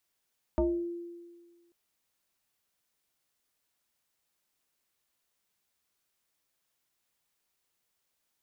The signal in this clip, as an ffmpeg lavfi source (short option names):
-f lavfi -i "aevalsrc='0.0794*pow(10,-3*t/1.58)*sin(2*PI*344*t+1.6*pow(10,-3*t/0.45)*sin(2*PI*0.82*344*t))':d=1.14:s=44100"